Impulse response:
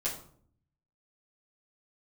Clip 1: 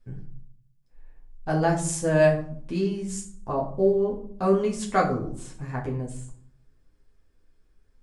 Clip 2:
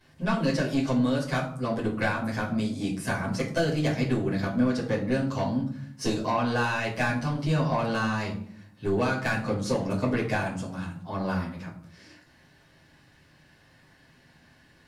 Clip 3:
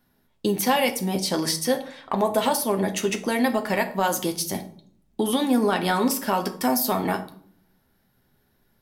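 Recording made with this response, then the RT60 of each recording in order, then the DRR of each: 2; 0.60, 0.55, 0.60 s; -3.5, -11.0, 4.5 dB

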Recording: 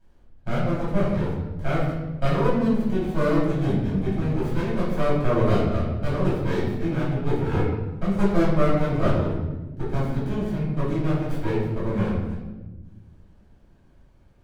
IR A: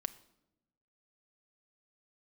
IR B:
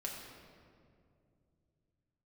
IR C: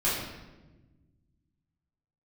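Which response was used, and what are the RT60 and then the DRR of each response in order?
C; 0.90, 2.4, 1.2 s; 9.5, -2.0, -10.5 dB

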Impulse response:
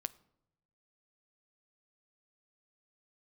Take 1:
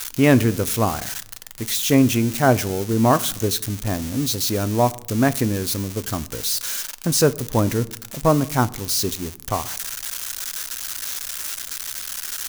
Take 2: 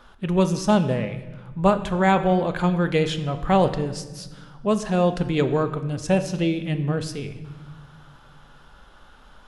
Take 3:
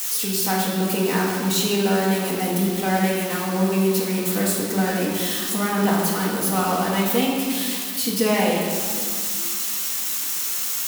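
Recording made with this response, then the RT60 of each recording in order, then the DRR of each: 1; 0.85, 1.5, 2.1 s; 14.5, 8.0, -4.5 dB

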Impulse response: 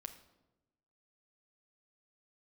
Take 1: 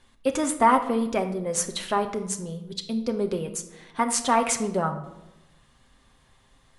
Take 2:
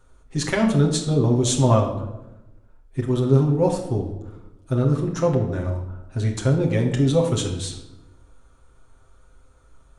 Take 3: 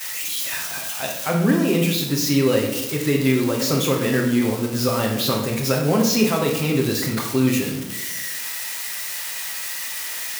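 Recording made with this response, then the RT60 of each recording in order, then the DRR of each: 1; 1.0, 1.0, 1.0 s; 5.0, -1.5, -10.5 dB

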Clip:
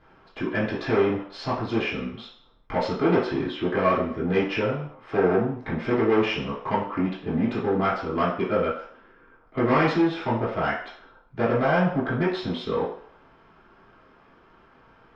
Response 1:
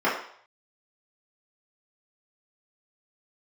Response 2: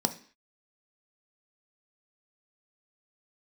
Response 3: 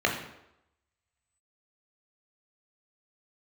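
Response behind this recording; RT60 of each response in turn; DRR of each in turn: 1; 0.60, 0.45, 0.85 s; -9.5, 7.0, 0.0 dB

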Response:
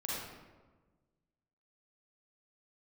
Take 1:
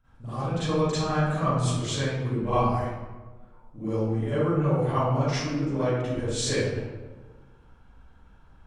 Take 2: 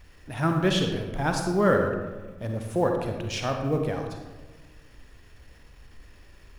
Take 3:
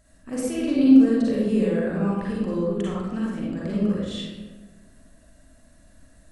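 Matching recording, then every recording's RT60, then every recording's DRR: 3; 1.3, 1.4, 1.3 s; -16.5, 3.0, -7.0 dB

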